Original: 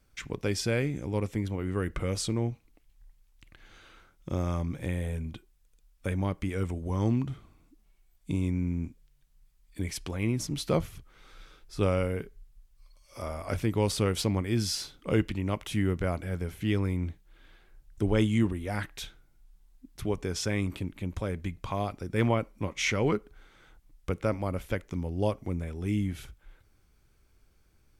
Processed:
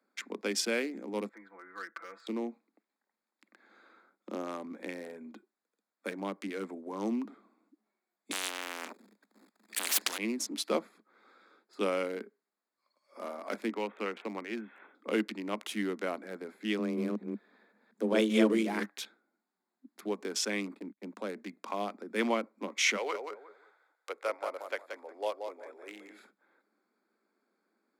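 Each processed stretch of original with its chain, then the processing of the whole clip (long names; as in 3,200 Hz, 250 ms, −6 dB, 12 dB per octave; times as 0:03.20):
0:01.29–0:02.27: resonant band-pass 1,500 Hz, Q 2.5 + comb filter 6 ms, depth 95%
0:08.31–0:10.18: low-shelf EQ 190 Hz +7.5 dB + leveller curve on the samples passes 3 + every bin compressed towards the loudest bin 10 to 1
0:13.69–0:14.95: Butterworth low-pass 3,100 Hz 96 dB per octave + low-shelf EQ 430 Hz −9 dB + multiband upward and downward compressor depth 40%
0:16.78–0:18.84: delay that plays each chunk backwards 189 ms, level −1 dB + frequency shifter +110 Hz
0:20.68–0:21.23: noise gate −42 dBFS, range −45 dB + upward compression, threshold −39 dBFS
0:22.96–0:26.17: high-pass filter 480 Hz 24 dB per octave + repeating echo 179 ms, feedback 25%, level −6 dB
whole clip: adaptive Wiener filter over 15 samples; Butterworth high-pass 200 Hz 96 dB per octave; tilt shelving filter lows −3.5 dB, about 1,300 Hz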